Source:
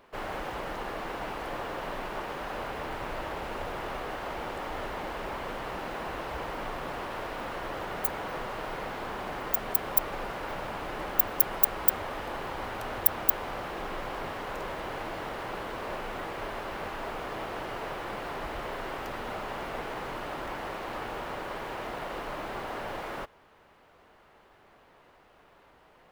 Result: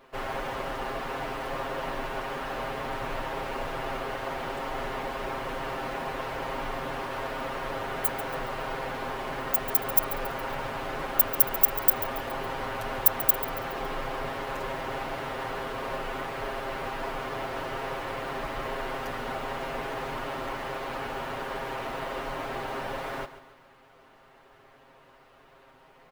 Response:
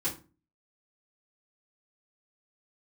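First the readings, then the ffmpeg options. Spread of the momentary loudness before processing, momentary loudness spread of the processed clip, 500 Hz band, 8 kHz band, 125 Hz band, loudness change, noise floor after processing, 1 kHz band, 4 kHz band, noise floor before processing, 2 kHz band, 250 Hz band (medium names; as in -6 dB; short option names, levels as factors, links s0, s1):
10 LU, 10 LU, +3.0 dB, +3.0 dB, +3.0 dB, +2.5 dB, -57 dBFS, +2.5 dB, +2.5 dB, -59 dBFS, +3.0 dB, +2.0 dB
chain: -filter_complex "[0:a]aecho=1:1:7.5:0.87,asplit=2[s0][s1];[s1]aecho=0:1:139|278|417|556:0.2|0.0898|0.0404|0.0182[s2];[s0][s2]amix=inputs=2:normalize=0"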